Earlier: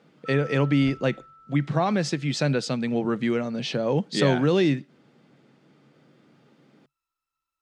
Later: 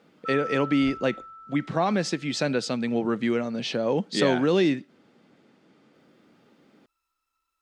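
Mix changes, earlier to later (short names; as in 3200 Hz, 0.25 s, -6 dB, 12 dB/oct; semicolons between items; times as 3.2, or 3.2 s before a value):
first sound +7.0 dB; master: add bell 140 Hz -11 dB 0.31 oct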